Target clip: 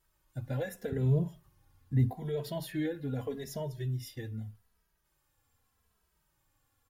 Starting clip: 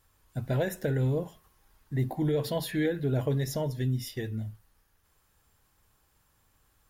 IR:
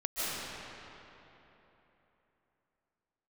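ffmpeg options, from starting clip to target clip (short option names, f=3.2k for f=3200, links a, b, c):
-filter_complex "[0:a]asettb=1/sr,asplit=3[a][b][c];[a]atrim=end=0.924[d];[b]atrim=start=0.92:end=2.13,asetpts=PTS-STARTPTS,afade=t=in:d=0.004:c=qsin,afade=t=out:st=1.206:d=0.004:c=qsin,equalizer=f=110:t=o:w=2.1:g=15[e];[c]atrim=start=2.126[f];[d][e]acrossfade=d=0.004:c1=hsin:c2=qsin[g];[g][f]acrossfade=d=0.004:c1=qsin:c2=hsin,asplit=2[h][i];[i]adelay=2.7,afreqshift=-0.81[j];[h][j]amix=inputs=2:normalize=1,volume=-4dB"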